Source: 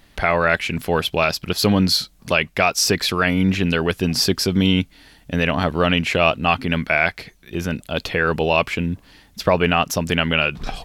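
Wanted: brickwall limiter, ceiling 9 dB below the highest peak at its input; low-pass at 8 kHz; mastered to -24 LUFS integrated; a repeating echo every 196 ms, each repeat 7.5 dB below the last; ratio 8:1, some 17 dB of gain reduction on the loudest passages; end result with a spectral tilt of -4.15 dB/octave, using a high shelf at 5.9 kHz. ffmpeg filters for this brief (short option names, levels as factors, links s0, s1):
-af "lowpass=8000,highshelf=f=5900:g=4.5,acompressor=threshold=0.0316:ratio=8,alimiter=limit=0.0668:level=0:latency=1,aecho=1:1:196|392|588|784|980:0.422|0.177|0.0744|0.0312|0.0131,volume=3.35"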